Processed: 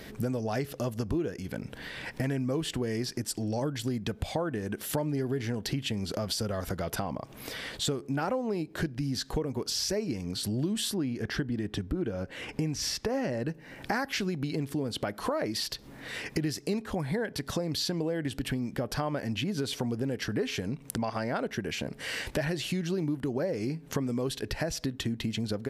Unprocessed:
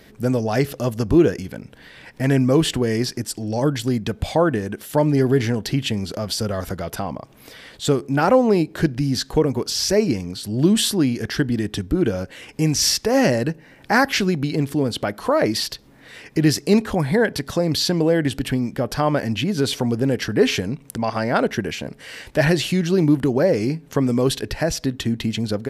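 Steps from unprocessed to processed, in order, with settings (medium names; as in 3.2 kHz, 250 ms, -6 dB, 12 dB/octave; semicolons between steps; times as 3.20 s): 10.94–13.48 s: treble shelf 3.9 kHz -9.5 dB; compression 5:1, threshold -33 dBFS, peak gain reduction 20.5 dB; trim +3 dB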